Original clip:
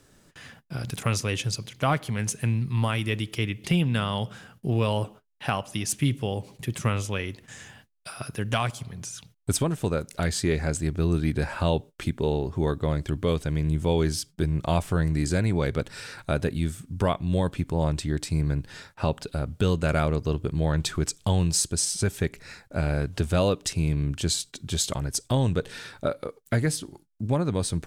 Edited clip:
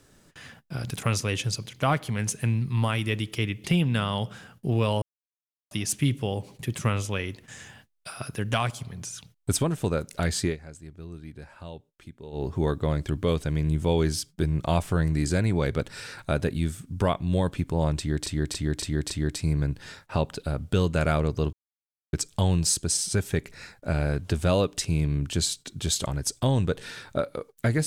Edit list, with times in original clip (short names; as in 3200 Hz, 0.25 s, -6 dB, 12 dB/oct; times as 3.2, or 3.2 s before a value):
5.02–5.71 mute
10.45–12.44 dip -17 dB, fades 0.12 s
17.98–18.26 loop, 5 plays
20.41–21.01 mute